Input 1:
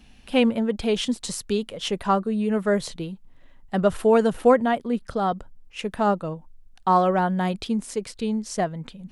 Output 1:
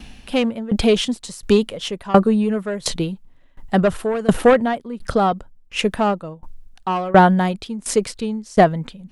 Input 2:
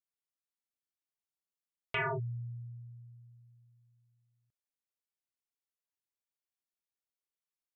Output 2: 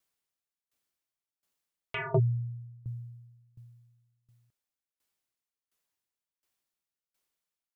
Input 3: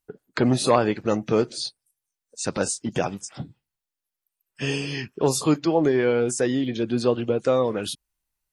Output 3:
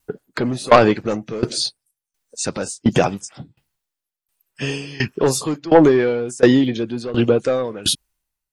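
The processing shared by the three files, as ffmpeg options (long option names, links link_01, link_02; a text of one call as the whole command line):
ffmpeg -i in.wav -filter_complex "[0:a]asplit=2[link_01][link_02];[link_02]aeval=exprs='0.596*sin(PI/2*3.16*val(0)/0.596)':channel_layout=same,volume=-10.5dB[link_03];[link_01][link_03]amix=inputs=2:normalize=0,aeval=exprs='val(0)*pow(10,-21*if(lt(mod(1.4*n/s,1),2*abs(1.4)/1000),1-mod(1.4*n/s,1)/(2*abs(1.4)/1000),(mod(1.4*n/s,1)-2*abs(1.4)/1000)/(1-2*abs(1.4)/1000))/20)':channel_layout=same,volume=6.5dB" out.wav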